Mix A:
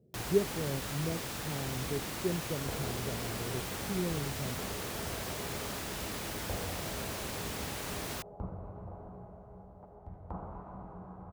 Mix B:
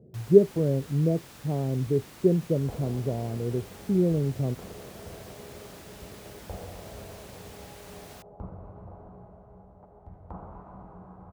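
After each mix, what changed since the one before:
speech +11.5 dB
first sound −9.5 dB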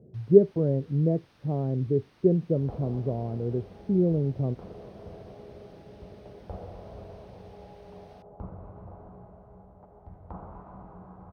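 first sound −11.5 dB
master: add Savitzky-Golay smoothing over 15 samples

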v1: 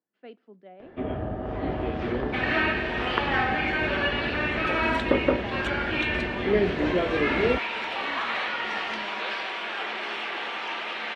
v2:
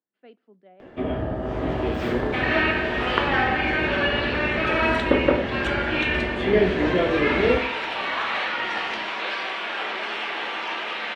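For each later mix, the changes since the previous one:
speech −4.0 dB
first sound: remove high-frequency loss of the air 180 metres
reverb: on, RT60 0.60 s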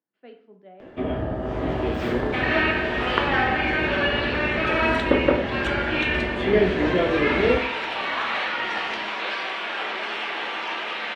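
speech: send on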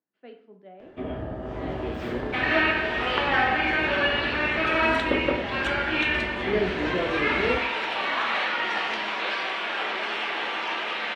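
first sound −6.0 dB

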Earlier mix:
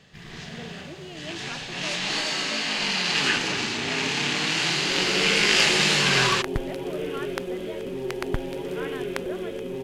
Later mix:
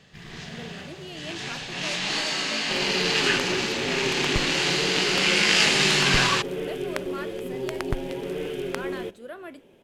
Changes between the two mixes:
speech: remove moving average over 7 samples
second sound: entry −2.20 s

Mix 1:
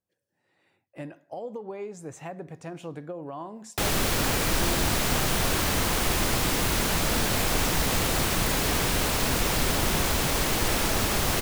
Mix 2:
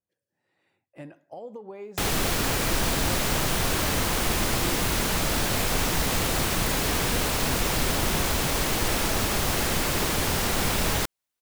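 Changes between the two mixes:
speech −3.5 dB
background: entry −1.80 s

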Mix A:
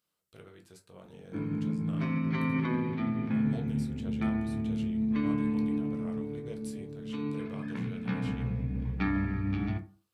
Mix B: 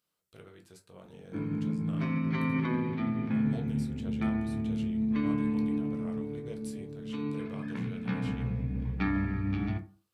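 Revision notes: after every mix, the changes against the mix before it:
nothing changed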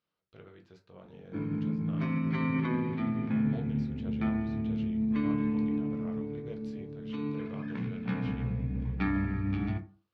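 speech: add moving average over 5 samples
master: add high-frequency loss of the air 74 metres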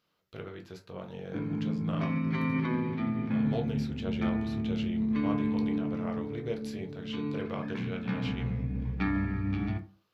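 speech +10.0 dB
master: remove high-frequency loss of the air 74 metres

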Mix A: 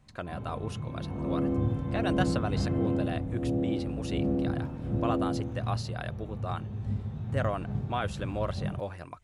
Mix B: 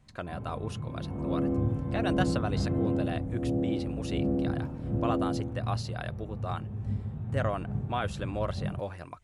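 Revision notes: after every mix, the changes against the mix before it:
first sound: add high-frequency loss of the air 460 metres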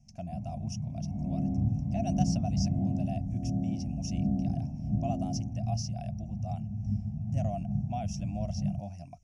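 master: add drawn EQ curve 110 Hz 0 dB, 210 Hz +5 dB, 460 Hz −30 dB, 690 Hz +2 dB, 1,100 Hz −29 dB, 1,600 Hz −28 dB, 2,600 Hz −8 dB, 4,000 Hz −22 dB, 5,600 Hz +13 dB, 8,000 Hz −8 dB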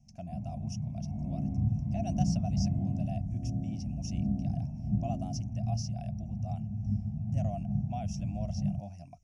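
speech −3.0 dB
second sound: send −9.0 dB

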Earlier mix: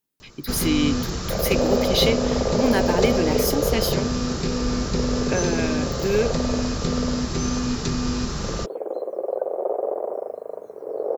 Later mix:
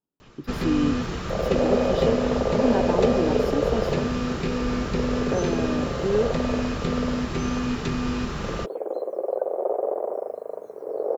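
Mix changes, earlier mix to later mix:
speech: add moving average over 21 samples
first sound: add high shelf with overshoot 3,800 Hz −8.5 dB, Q 1.5
master: add low-shelf EQ 160 Hz −4 dB

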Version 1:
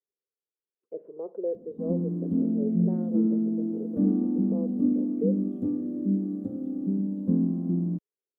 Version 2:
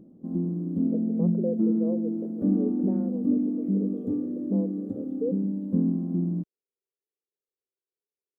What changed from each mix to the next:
background: entry −1.55 s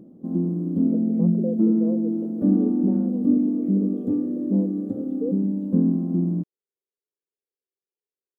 background +6.0 dB
master: add low-shelf EQ 110 Hz −7.5 dB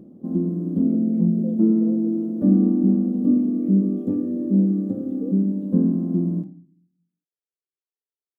speech −8.0 dB
background: send on

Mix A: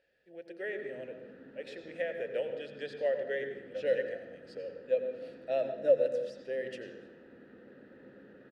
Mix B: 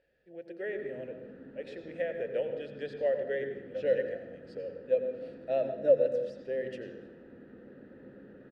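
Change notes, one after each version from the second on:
master: add spectral tilt −2 dB per octave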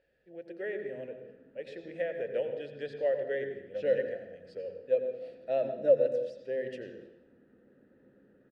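background −11.0 dB

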